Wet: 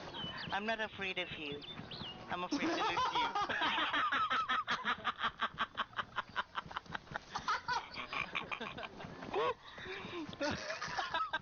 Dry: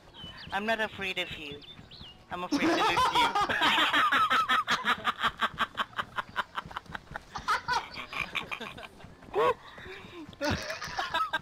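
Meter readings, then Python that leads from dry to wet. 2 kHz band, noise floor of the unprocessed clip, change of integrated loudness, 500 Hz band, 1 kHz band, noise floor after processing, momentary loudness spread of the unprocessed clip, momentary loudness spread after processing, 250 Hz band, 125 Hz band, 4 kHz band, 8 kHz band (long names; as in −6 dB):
−8.0 dB, −54 dBFS, −9.0 dB, −8.0 dB, −8.0 dB, −58 dBFS, 20 LU, 12 LU, −8.0 dB, −7.0 dB, −8.5 dB, −10.0 dB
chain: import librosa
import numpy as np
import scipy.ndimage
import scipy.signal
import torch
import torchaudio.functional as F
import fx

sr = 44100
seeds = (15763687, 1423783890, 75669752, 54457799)

y = scipy.signal.sosfilt(scipy.signal.cheby1(10, 1.0, 6400.0, 'lowpass', fs=sr, output='sos'), x)
y = fx.band_squash(y, sr, depth_pct=70)
y = F.gain(torch.from_numpy(y), -8.0).numpy()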